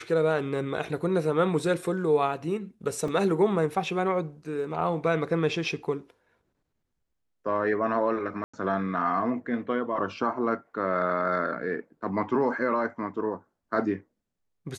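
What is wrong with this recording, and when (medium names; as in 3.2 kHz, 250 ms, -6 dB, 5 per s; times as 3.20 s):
3.08 s: dropout 2.9 ms
8.44–8.54 s: dropout 95 ms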